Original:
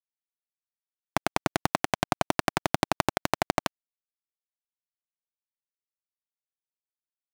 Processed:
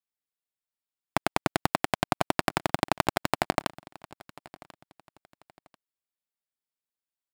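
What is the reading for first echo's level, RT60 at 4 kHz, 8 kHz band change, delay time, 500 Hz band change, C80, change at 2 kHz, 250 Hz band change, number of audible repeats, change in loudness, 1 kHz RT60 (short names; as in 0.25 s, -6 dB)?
-22.0 dB, none, -2.0 dB, 1.04 s, 0.0 dB, none, 0.0 dB, 0.0 dB, 2, 0.0 dB, none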